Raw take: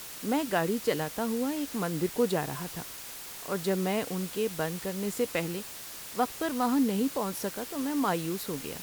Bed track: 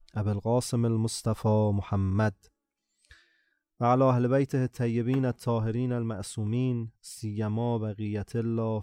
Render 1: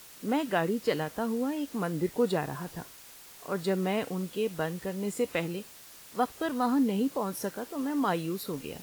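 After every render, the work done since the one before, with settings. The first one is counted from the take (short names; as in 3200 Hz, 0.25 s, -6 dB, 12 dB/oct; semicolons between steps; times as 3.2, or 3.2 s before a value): noise print and reduce 8 dB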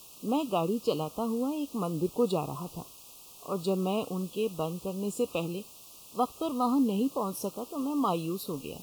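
elliptic band-stop 1200–2600 Hz, stop band 40 dB; dynamic EQ 1300 Hz, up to +6 dB, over -54 dBFS, Q 3.1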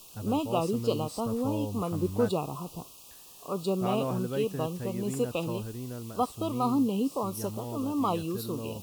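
add bed track -9.5 dB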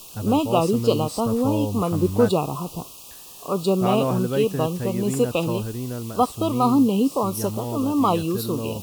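gain +8.5 dB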